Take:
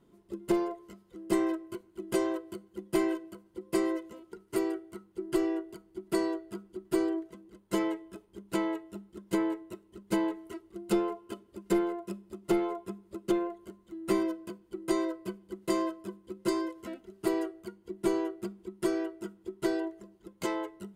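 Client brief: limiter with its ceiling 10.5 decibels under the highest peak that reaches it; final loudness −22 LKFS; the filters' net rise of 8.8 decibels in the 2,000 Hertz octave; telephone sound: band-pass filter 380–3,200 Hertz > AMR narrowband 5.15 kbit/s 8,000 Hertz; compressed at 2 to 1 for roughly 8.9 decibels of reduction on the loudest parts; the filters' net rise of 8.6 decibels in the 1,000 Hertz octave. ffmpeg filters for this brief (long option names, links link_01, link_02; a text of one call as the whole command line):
ffmpeg -i in.wav -af "equalizer=frequency=1000:width_type=o:gain=8,equalizer=frequency=2000:width_type=o:gain=8.5,acompressor=threshold=-38dB:ratio=2,alimiter=level_in=7dB:limit=-24dB:level=0:latency=1,volume=-7dB,highpass=380,lowpass=3200,volume=24.5dB" -ar 8000 -c:a libopencore_amrnb -b:a 5150 out.amr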